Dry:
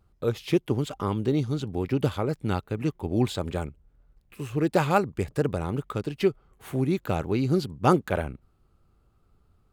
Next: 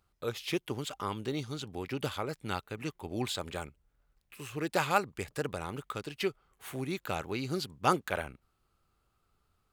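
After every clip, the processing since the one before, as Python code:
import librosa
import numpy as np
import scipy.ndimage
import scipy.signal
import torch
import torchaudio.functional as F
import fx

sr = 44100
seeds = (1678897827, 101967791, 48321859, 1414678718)

y = fx.tilt_shelf(x, sr, db=-7.0, hz=710.0)
y = y * 10.0 ** (-6.0 / 20.0)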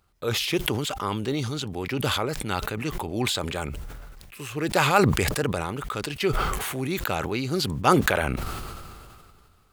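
y = fx.sustainer(x, sr, db_per_s=26.0)
y = y * 10.0 ** (6.5 / 20.0)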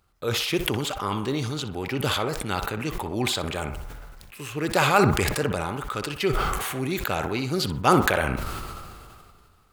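y = fx.echo_banded(x, sr, ms=62, feedback_pct=57, hz=1000.0, wet_db=-6.5)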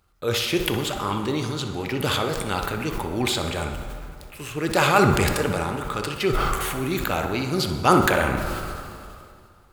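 y = fx.rev_plate(x, sr, seeds[0], rt60_s=2.3, hf_ratio=0.6, predelay_ms=0, drr_db=6.5)
y = y * 10.0 ** (1.0 / 20.0)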